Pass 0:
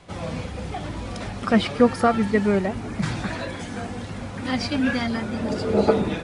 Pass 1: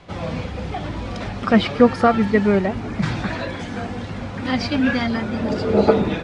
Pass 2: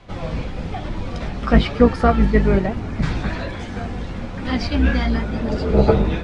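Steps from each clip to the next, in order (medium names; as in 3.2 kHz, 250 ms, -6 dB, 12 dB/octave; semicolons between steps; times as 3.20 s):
low-pass 5.1 kHz 12 dB/octave; trim +3.5 dB
octave divider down 2 oct, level +4 dB; flange 1.1 Hz, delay 8.4 ms, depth 7.1 ms, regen -41%; trim +2 dB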